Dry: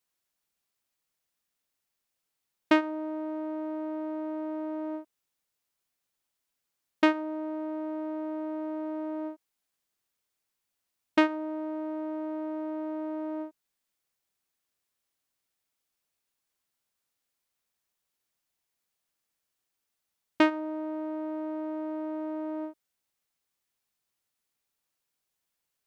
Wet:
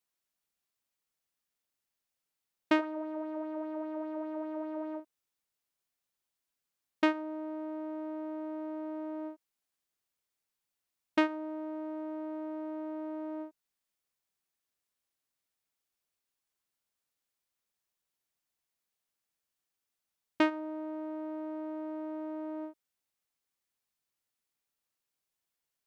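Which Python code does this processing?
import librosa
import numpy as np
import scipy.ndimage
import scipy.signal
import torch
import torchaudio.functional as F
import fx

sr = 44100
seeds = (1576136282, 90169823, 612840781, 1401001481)

y = fx.bell_lfo(x, sr, hz=5.0, low_hz=510.0, high_hz=4500.0, db=7, at=(2.79, 5.0))
y = F.gain(torch.from_numpy(y), -4.5).numpy()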